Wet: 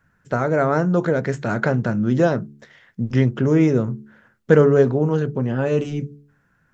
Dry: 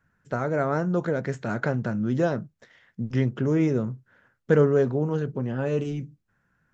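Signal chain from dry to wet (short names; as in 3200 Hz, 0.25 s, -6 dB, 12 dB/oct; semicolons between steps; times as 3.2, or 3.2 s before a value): de-hum 72.12 Hz, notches 6; gain +6.5 dB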